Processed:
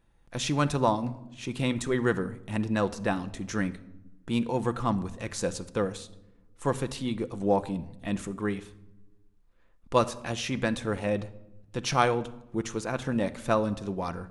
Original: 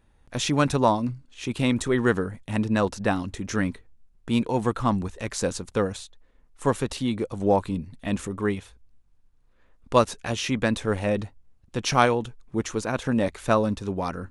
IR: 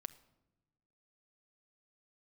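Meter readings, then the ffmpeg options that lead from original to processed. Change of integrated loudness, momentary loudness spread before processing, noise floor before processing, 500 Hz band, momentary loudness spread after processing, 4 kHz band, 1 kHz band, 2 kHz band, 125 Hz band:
-4.0 dB, 9 LU, -60 dBFS, -4.0 dB, 9 LU, -4.0 dB, -4.0 dB, -4.0 dB, -3.5 dB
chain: -filter_complex "[1:a]atrim=start_sample=2205[s0];[0:a][s0]afir=irnorm=-1:irlink=0"

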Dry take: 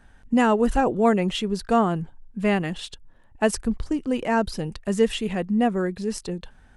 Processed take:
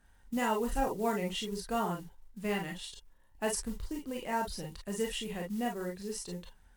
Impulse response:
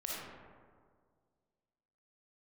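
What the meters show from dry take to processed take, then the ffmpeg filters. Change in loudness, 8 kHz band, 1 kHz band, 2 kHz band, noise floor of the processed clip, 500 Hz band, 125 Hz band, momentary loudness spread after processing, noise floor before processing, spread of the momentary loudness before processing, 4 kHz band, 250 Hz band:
-11.5 dB, -3.5 dB, -10.0 dB, -10.0 dB, -63 dBFS, -12.0 dB, -12.5 dB, 10 LU, -53 dBFS, 11 LU, -7.5 dB, -13.5 dB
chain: -filter_complex "[0:a]acrusher=bits=7:mode=log:mix=0:aa=0.000001,aemphasis=mode=production:type=cd[s0];[1:a]atrim=start_sample=2205,afade=t=out:st=0.13:d=0.01,atrim=end_sample=6174,asetrate=66150,aresample=44100[s1];[s0][s1]afir=irnorm=-1:irlink=0,volume=0.501"

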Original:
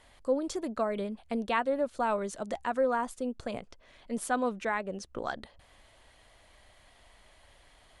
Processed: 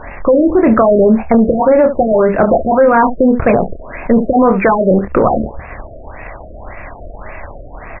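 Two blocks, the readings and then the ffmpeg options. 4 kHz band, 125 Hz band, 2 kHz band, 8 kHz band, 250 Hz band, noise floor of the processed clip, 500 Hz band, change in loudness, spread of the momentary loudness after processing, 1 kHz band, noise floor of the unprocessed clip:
under -15 dB, +27.0 dB, +15.0 dB, under -35 dB, +23.5 dB, -32 dBFS, +21.5 dB, +21.0 dB, 11 LU, +18.5 dB, -61 dBFS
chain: -filter_complex "[0:a]lowpass=5700,asplit=2[s0][s1];[s1]aecho=0:1:27|72:0.447|0.158[s2];[s0][s2]amix=inputs=2:normalize=0,acompressor=threshold=0.0224:ratio=6,apsyclip=56.2,asplit=2[s3][s4];[s4]acrusher=bits=4:dc=4:mix=0:aa=0.000001,volume=0.562[s5];[s3][s5]amix=inputs=2:normalize=0,afftfilt=real='re*lt(b*sr/1024,680*pow(2800/680,0.5+0.5*sin(2*PI*1.8*pts/sr)))':imag='im*lt(b*sr/1024,680*pow(2800/680,0.5+0.5*sin(2*PI*1.8*pts/sr)))':win_size=1024:overlap=0.75,volume=0.422"

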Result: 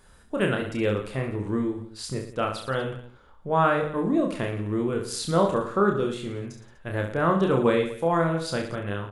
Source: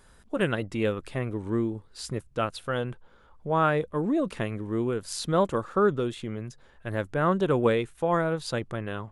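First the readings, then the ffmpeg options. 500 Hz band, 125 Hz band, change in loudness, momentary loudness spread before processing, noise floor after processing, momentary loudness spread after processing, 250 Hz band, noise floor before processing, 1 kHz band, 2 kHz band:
+2.0 dB, +2.0 dB, +2.0 dB, 12 LU, -53 dBFS, 12 LU, +2.5 dB, -57 dBFS, +2.5 dB, +2.0 dB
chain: -af "aecho=1:1:30|67.5|114.4|173|246.2:0.631|0.398|0.251|0.158|0.1"

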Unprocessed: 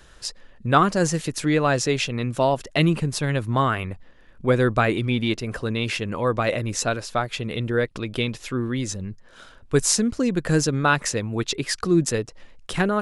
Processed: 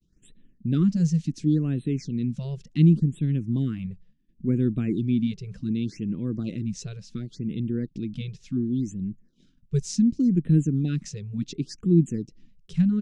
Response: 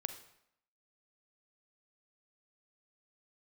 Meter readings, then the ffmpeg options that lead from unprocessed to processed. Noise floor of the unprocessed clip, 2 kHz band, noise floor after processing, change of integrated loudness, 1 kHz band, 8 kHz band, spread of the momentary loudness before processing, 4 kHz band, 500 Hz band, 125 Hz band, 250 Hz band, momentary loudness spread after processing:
-50 dBFS, -23.0 dB, -63 dBFS, -2.5 dB, under -30 dB, -15.5 dB, 9 LU, -16.0 dB, -12.5 dB, +1.0 dB, +1.5 dB, 13 LU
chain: -af "agate=range=0.0224:threshold=0.00891:ratio=3:detection=peak,firequalizer=gain_entry='entry(100,0);entry(170,12);entry(320,5);entry(550,-19);entry(850,-26);entry(2400,-11);entry(5900,-5);entry(12000,-27)':delay=0.05:min_phase=1,afftfilt=real='re*(1-between(b*sr/1024,250*pow(5900/250,0.5+0.5*sin(2*PI*0.69*pts/sr))/1.41,250*pow(5900/250,0.5+0.5*sin(2*PI*0.69*pts/sr))*1.41))':imag='im*(1-between(b*sr/1024,250*pow(5900/250,0.5+0.5*sin(2*PI*0.69*pts/sr))/1.41,250*pow(5900/250,0.5+0.5*sin(2*PI*0.69*pts/sr))*1.41))':win_size=1024:overlap=0.75,volume=0.473"

